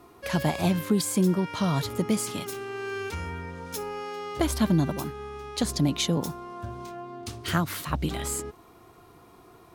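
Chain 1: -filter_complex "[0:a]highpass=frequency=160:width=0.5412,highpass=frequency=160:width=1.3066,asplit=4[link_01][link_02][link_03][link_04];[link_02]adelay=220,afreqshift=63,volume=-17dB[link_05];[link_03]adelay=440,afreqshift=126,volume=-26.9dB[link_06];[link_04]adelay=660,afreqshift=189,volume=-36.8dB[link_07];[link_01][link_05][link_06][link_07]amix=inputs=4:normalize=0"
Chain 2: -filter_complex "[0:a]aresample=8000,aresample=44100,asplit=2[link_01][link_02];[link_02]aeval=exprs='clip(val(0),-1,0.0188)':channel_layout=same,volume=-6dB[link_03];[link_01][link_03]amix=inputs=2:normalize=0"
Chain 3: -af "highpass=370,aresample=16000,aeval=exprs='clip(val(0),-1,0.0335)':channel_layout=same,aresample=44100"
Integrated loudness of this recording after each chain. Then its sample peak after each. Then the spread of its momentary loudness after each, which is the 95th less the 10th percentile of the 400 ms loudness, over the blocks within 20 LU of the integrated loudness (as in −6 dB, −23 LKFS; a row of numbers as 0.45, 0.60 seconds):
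−29.5, −27.0, −34.0 LKFS; −11.0, −10.5, −12.5 dBFS; 14, 13, 10 LU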